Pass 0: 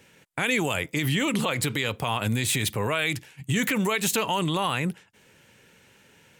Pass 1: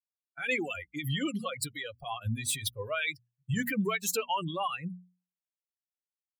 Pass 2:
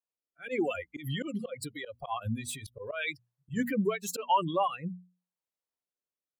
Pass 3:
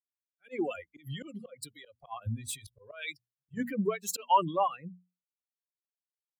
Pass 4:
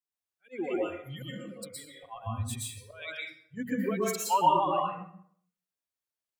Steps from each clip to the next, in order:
spectral dynamics exaggerated over time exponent 3; mains-hum notches 60/120/180/240 Hz
octave-band graphic EQ 250/500/1,000 Hz +5/+9/+8 dB; volume swells 106 ms; rotating-speaker cabinet horn 0.85 Hz; level −2 dB
multiband upward and downward expander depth 100%; level −5 dB
dense smooth reverb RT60 0.61 s, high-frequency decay 0.7×, pre-delay 105 ms, DRR −4.5 dB; level −3 dB

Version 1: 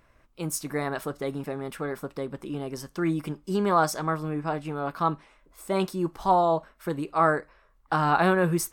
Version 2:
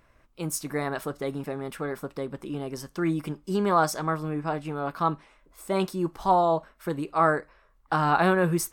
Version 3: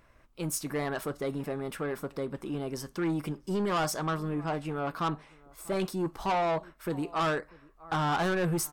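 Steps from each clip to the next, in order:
no processing that can be heard
slap from a distant wall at 110 metres, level −27 dB; soft clipping −24.5 dBFS, distortion −8 dB

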